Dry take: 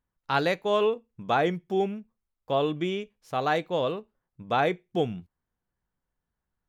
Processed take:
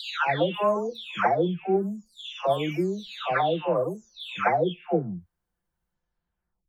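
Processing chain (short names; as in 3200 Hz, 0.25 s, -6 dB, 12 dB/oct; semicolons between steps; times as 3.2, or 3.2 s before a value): spectral delay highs early, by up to 0.747 s; gain +3.5 dB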